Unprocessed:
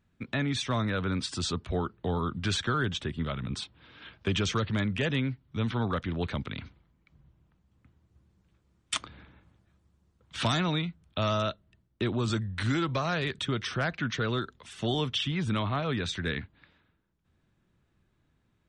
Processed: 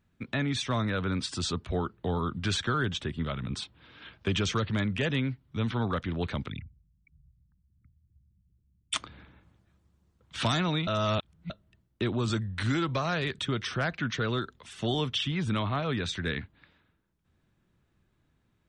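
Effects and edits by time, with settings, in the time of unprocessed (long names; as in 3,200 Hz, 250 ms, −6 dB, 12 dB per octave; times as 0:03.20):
0:06.50–0:08.94: spectral envelope exaggerated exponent 3
0:10.87–0:11.50: reverse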